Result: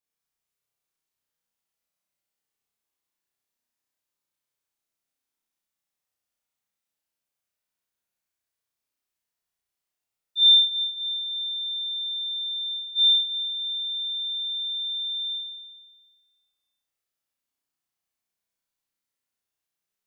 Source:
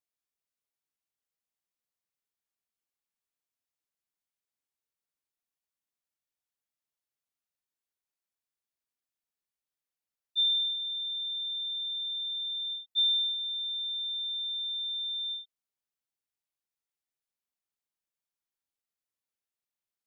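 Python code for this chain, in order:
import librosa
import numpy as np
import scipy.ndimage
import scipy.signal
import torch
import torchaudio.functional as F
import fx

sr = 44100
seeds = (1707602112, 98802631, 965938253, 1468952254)

y = fx.tilt_eq(x, sr, slope=2.0, at=(10.41, 10.83), fade=0.02)
y = fx.room_flutter(y, sr, wall_m=5.6, rt60_s=1.5)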